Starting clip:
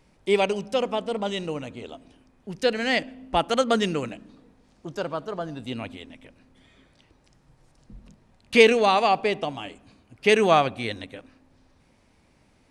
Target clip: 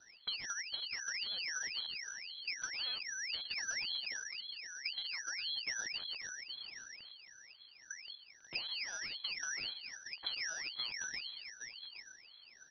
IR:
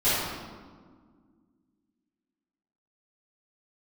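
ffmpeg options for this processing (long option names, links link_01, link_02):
-filter_complex "[0:a]highpass=120,equalizer=frequency=300:width_type=o:width=1.5:gain=13,acompressor=threshold=-22dB:ratio=6,asuperstop=centerf=730:order=4:qfactor=0.86,acrossover=split=190|400[link_01][link_02][link_03];[link_01]acompressor=threshold=-42dB:ratio=4[link_04];[link_02]acompressor=threshold=-40dB:ratio=4[link_05];[link_03]acompressor=threshold=-46dB:ratio=4[link_06];[link_04][link_05][link_06]amix=inputs=3:normalize=0,asplit=2[link_07][link_08];[link_08]adelay=816.3,volume=-8dB,highshelf=frequency=4000:gain=-18.4[link_09];[link_07][link_09]amix=inputs=2:normalize=0,lowpass=frequency=3400:width_type=q:width=0.5098,lowpass=frequency=3400:width_type=q:width=0.6013,lowpass=frequency=3400:width_type=q:width=0.9,lowpass=frequency=3400:width_type=q:width=2.563,afreqshift=-4000,aeval=exprs='val(0)*sin(2*PI*1300*n/s+1300*0.7/1.9*sin(2*PI*1.9*n/s))':channel_layout=same,volume=-2dB"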